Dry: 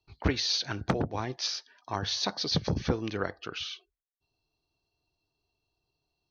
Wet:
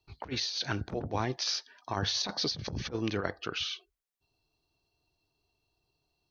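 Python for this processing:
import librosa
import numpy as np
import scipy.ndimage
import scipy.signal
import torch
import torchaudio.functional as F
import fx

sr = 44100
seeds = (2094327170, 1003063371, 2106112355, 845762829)

y = fx.over_compress(x, sr, threshold_db=-32.0, ratio=-0.5)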